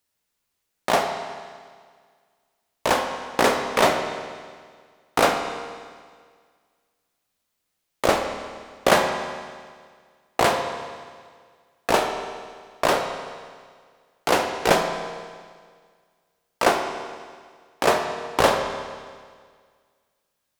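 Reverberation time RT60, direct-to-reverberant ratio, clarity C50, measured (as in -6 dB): 1.8 s, 4.0 dB, 6.0 dB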